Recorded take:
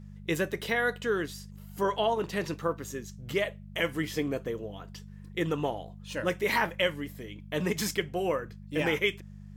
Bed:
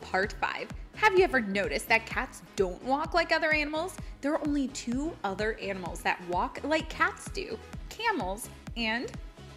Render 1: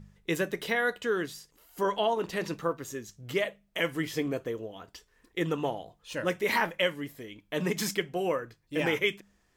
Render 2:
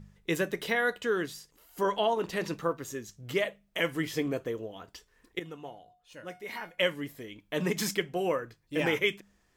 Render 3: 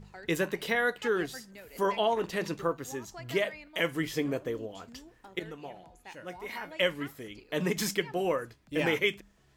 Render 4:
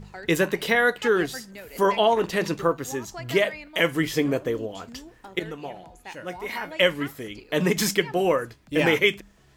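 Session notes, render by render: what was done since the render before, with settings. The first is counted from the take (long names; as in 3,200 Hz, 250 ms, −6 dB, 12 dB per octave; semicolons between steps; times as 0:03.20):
hum removal 50 Hz, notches 4
0:05.39–0:06.78: tuned comb filter 720 Hz, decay 0.35 s, mix 80%
mix in bed −20 dB
level +7.5 dB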